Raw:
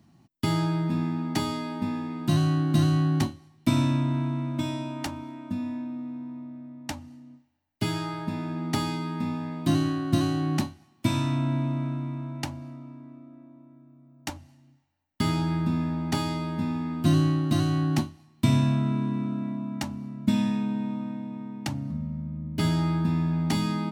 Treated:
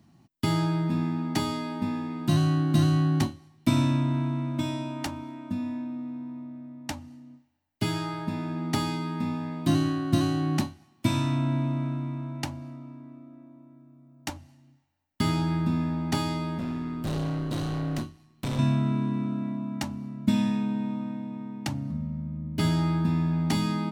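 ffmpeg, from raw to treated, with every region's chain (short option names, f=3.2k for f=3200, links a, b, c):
-filter_complex "[0:a]asettb=1/sr,asplit=3[a][b][c];[a]atrim=end=16.584[d];[b]atrim=start=16.58:end=18.59,asetpts=PTS-STARTPTS,afade=t=in:d=0.004:c=qsin,afade=t=out:st=2.006:d=0.004:c=qsin,bandreject=f=840:w=9,asoftclip=type=hard:threshold=-25.5dB,tremolo=f=120:d=0.4[e];[c]atrim=start=18.586[f];[d][e]acrossfade=d=0.004:c1=hsin:c2=qsin[g];[g][f]acrossfade=d=0.004:c1=qsin:c2=hsin"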